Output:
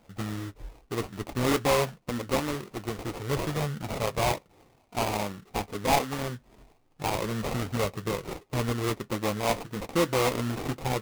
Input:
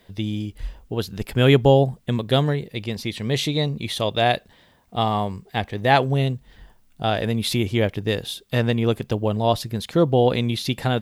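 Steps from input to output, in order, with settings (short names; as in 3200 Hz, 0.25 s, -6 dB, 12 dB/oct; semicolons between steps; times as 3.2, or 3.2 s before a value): low shelf 97 Hz -11.5 dB; in parallel at -1 dB: compressor, threshold -28 dBFS, peak gain reduction 16 dB; on the sum: flange 1.1 Hz, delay 5.4 ms, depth 1.9 ms, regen -50%; sample-rate reducer 1600 Hz, jitter 20%; flange 0.26 Hz, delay 1.3 ms, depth 2.9 ms, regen -59%; hard clip -17 dBFS, distortion -19 dB; on a send at -18.5 dB: reverb RT60 0.25 s, pre-delay 3 ms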